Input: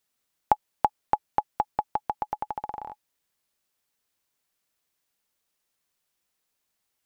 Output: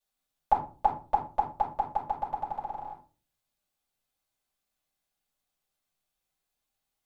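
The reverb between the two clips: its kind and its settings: shoebox room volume 180 m³, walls furnished, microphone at 6.2 m; gain -15.5 dB

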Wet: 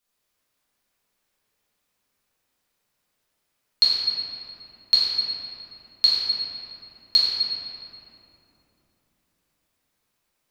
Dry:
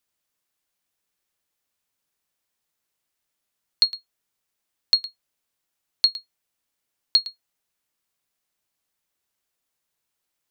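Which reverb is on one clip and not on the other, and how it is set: shoebox room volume 160 m³, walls hard, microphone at 1.3 m; gain -2.5 dB

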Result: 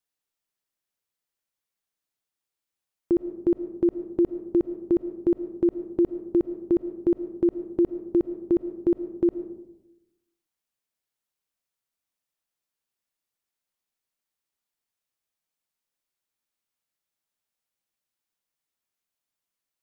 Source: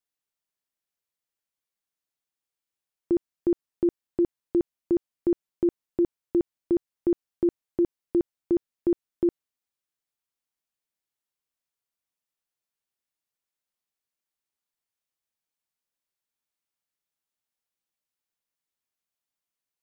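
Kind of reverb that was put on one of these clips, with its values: digital reverb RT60 0.96 s, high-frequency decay 0.3×, pre-delay 65 ms, DRR 11.5 dB; gain +1.5 dB

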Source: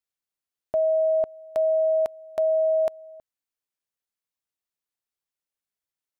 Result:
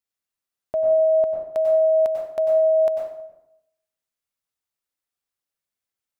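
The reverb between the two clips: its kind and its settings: plate-style reverb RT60 0.76 s, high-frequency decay 0.7×, pre-delay 85 ms, DRR 0.5 dB

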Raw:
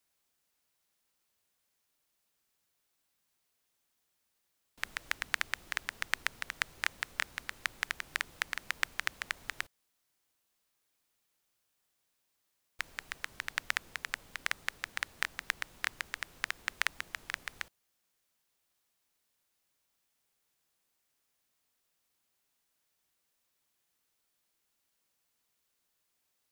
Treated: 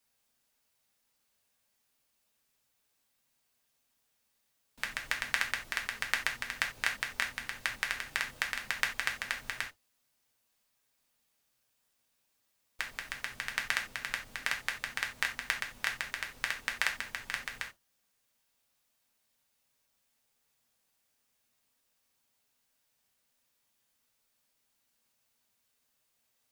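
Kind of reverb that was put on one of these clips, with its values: non-linear reverb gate 0.11 s falling, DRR 1 dB

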